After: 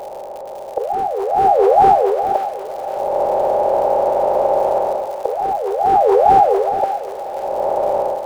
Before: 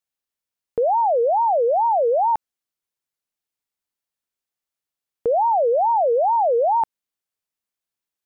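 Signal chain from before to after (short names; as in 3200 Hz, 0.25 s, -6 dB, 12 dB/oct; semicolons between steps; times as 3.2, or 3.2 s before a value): per-bin compression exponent 0.2; AGC gain up to 16.5 dB; formant-preserving pitch shift -3 st; crackle 110/s -27 dBFS; on a send: thinning echo 0.532 s, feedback 57%, high-pass 1200 Hz, level -6 dB; on the sum: gain -1.5 dB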